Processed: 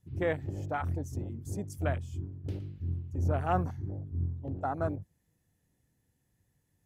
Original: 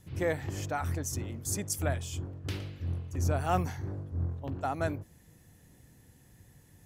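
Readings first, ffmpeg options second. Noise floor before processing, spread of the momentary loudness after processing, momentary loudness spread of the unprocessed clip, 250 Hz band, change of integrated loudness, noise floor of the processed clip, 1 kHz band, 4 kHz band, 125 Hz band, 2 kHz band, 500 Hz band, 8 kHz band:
-60 dBFS, 9 LU, 8 LU, 0.0 dB, -1.0 dB, -76 dBFS, -0.5 dB, under -10 dB, 0.0 dB, -2.0 dB, 0.0 dB, -16.5 dB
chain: -af "afwtdn=0.0141"

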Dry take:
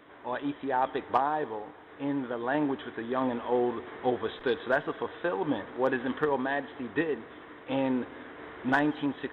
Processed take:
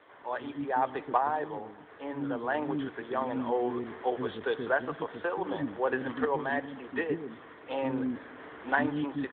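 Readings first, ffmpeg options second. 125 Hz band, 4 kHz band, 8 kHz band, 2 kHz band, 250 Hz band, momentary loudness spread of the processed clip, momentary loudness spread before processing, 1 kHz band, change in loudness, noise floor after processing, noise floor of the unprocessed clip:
-0.5 dB, -4.0 dB, no reading, -1.0 dB, -2.5 dB, 10 LU, 9 LU, -0.5 dB, -1.5 dB, -51 dBFS, -50 dBFS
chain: -filter_complex "[0:a]acrossover=split=330[s0][s1];[s0]adelay=130[s2];[s2][s1]amix=inputs=2:normalize=0" -ar 8000 -c:a libopencore_amrnb -b:a 12200

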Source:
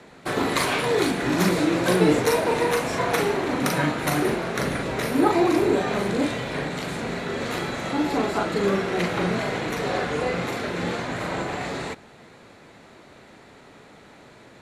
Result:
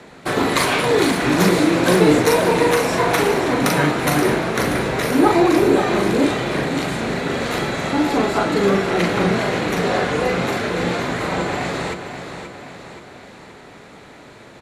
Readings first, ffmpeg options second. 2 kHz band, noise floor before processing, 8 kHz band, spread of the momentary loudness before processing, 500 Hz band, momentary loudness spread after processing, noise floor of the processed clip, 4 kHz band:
+6.0 dB, -49 dBFS, +6.0 dB, 9 LU, +6.0 dB, 9 LU, -42 dBFS, +6.0 dB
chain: -af "acontrast=36,aecho=1:1:527|1054|1581|2108|2635|3162:0.355|0.174|0.0852|0.0417|0.0205|0.01"

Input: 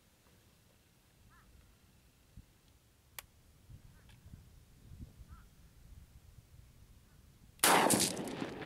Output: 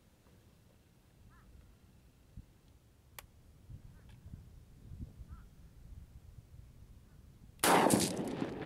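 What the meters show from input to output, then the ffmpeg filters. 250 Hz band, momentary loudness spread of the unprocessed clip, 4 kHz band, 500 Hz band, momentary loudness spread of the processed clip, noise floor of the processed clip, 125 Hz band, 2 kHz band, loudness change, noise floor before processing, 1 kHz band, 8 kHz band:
+3.5 dB, 14 LU, -3.5 dB, +2.5 dB, 12 LU, -66 dBFS, +4.0 dB, -2.0 dB, -1.0 dB, -68 dBFS, +0.5 dB, -4.0 dB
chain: -af "tiltshelf=f=970:g=4"

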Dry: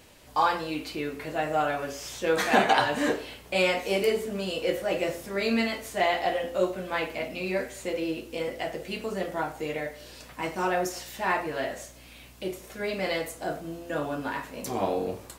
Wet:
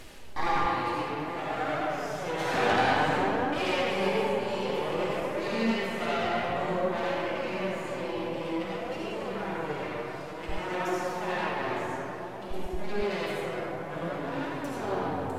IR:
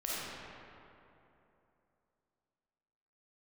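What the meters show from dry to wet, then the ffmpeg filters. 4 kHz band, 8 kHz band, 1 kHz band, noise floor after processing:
-3.0 dB, -7.5 dB, -0.5 dB, -38 dBFS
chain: -filter_complex "[0:a]acrossover=split=120[s0][s1];[s1]aeval=exprs='max(val(0),0)':c=same[s2];[s0][s2]amix=inputs=2:normalize=0[s3];[1:a]atrim=start_sample=2205,asetrate=27783,aresample=44100[s4];[s3][s4]afir=irnorm=-1:irlink=0,flanger=delay=2.7:depth=5.9:regen=58:speed=0.55:shape=triangular,areverse,acompressor=mode=upward:threshold=0.141:ratio=2.5,areverse,afftfilt=real='re*lt(hypot(re,im),1.78)':imag='im*lt(hypot(re,im),1.78)':win_size=1024:overlap=0.75,highshelf=f=6700:g=-6,volume=0.841"

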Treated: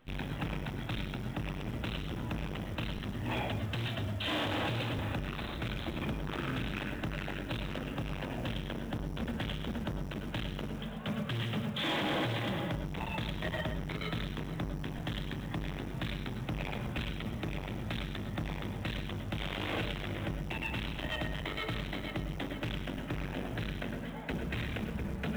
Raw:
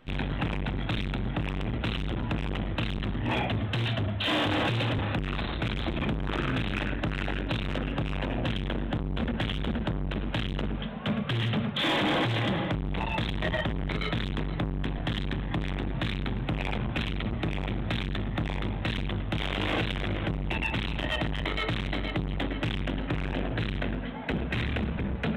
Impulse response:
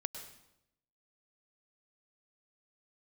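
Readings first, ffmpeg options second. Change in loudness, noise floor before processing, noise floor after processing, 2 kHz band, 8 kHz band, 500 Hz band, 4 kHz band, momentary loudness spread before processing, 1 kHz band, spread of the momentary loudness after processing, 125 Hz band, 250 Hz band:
-6.5 dB, -33 dBFS, -41 dBFS, -6.5 dB, no reading, -6.0 dB, -6.5 dB, 5 LU, -6.5 dB, 5 LU, -6.5 dB, -6.5 dB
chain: -filter_complex "[0:a]areverse,acompressor=mode=upward:threshold=0.0316:ratio=2.5,areverse,acrusher=bits=6:mode=log:mix=0:aa=0.000001[s0];[1:a]atrim=start_sample=2205,atrim=end_sample=6174[s1];[s0][s1]afir=irnorm=-1:irlink=0,volume=0.531"

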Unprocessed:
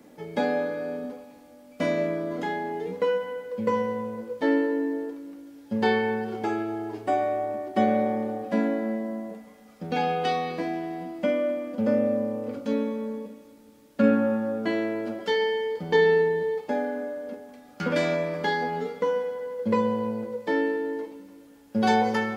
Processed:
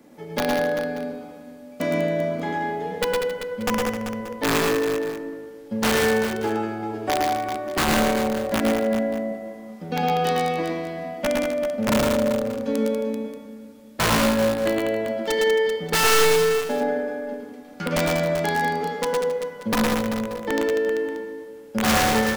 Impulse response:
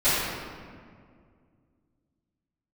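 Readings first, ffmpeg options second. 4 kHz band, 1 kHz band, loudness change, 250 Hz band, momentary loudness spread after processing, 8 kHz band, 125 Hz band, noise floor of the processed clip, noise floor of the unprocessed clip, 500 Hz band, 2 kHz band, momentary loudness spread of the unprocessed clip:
+10.5 dB, +4.0 dB, +3.5 dB, +2.0 dB, 13 LU, no reading, +6.0 dB, -42 dBFS, -51 dBFS, +3.0 dB, +6.0 dB, 12 LU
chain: -filter_complex "[0:a]aeval=exprs='(mod(5.96*val(0)+1,2)-1)/5.96':c=same,aecho=1:1:109|122|192|269|388|582:0.668|0.398|0.447|0.188|0.335|0.141,asplit=2[s0][s1];[1:a]atrim=start_sample=2205[s2];[s1][s2]afir=irnorm=-1:irlink=0,volume=0.0266[s3];[s0][s3]amix=inputs=2:normalize=0"

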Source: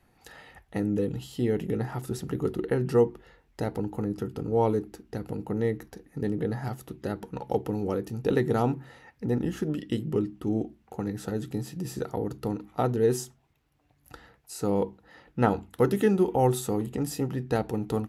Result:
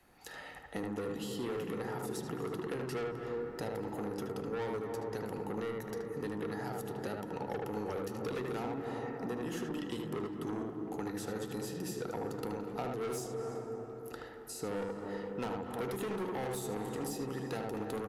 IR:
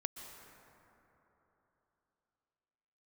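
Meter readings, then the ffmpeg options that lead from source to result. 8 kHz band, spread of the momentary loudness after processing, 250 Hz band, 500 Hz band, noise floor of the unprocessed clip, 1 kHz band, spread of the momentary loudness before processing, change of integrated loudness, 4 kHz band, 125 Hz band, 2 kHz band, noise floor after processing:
-5.0 dB, 3 LU, -10.0 dB, -9.0 dB, -66 dBFS, -7.5 dB, 11 LU, -10.0 dB, -3.0 dB, -13.0 dB, -4.0 dB, -48 dBFS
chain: -filter_complex "[0:a]bass=f=250:g=-7,treble=f=4000:g=2,bandreject=f=60:t=h:w=6,bandreject=f=120:t=h:w=6,asplit=2[s0][s1];[s1]adelay=335,lowpass=f=1100:p=1,volume=0.158,asplit=2[s2][s3];[s3]adelay=335,lowpass=f=1100:p=1,volume=0.49,asplit=2[s4][s5];[s5]adelay=335,lowpass=f=1100:p=1,volume=0.49,asplit=2[s6][s7];[s7]adelay=335,lowpass=f=1100:p=1,volume=0.49[s8];[s0][s2][s4][s6][s8]amix=inputs=5:normalize=0,asoftclip=type=tanh:threshold=0.0447,asplit=2[s9][s10];[s10]aemphasis=mode=reproduction:type=75fm[s11];[1:a]atrim=start_sample=2205,adelay=76[s12];[s11][s12]afir=irnorm=-1:irlink=0,volume=0.944[s13];[s9][s13]amix=inputs=2:normalize=0,volume=16.8,asoftclip=hard,volume=0.0596,acrossover=split=220|830[s14][s15][s16];[s14]acompressor=threshold=0.00447:ratio=4[s17];[s15]acompressor=threshold=0.01:ratio=4[s18];[s16]acompressor=threshold=0.00562:ratio=4[s19];[s17][s18][s19]amix=inputs=3:normalize=0,volume=1.12"

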